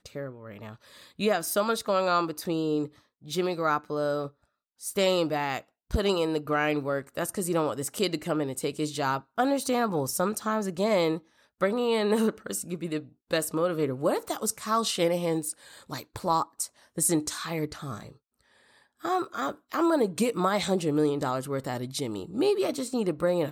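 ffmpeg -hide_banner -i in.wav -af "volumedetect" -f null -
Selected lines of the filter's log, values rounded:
mean_volume: -28.6 dB
max_volume: -11.4 dB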